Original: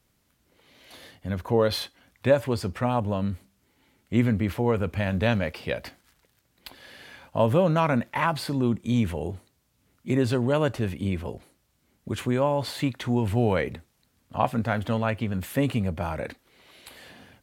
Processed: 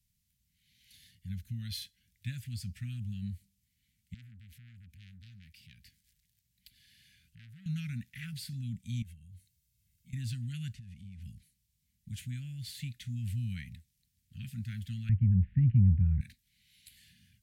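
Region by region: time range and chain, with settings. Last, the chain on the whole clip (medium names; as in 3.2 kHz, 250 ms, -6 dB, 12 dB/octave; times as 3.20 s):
4.14–7.66 s: compression 1.5:1, threshold -49 dBFS + transformer saturation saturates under 1.6 kHz
9.02–10.13 s: treble shelf 11 kHz +4 dB + compression 5:1, threshold -40 dBFS + comb 1.9 ms, depth 47%
10.74–11.22 s: CVSD coder 64 kbps + low-pass 3 kHz 6 dB/octave + compression 12:1, threshold -33 dBFS
15.09–16.21 s: low-pass 2.1 kHz 24 dB/octave + tilt EQ -4.5 dB/octave
whole clip: inverse Chebyshev band-stop 330–1100 Hz, stop band 40 dB; peaking EQ 920 Hz -14 dB 3 oct; trim -6 dB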